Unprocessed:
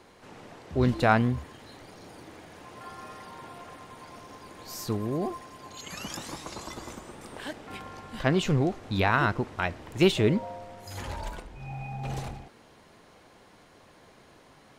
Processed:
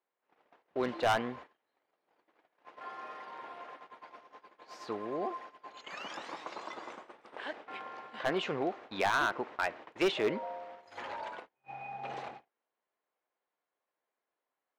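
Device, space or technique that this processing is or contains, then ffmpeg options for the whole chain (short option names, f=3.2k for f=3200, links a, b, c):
walkie-talkie: -af "highpass=490,lowpass=2.7k,asoftclip=type=hard:threshold=-22.5dB,agate=range=-31dB:threshold=-47dB:ratio=16:detection=peak"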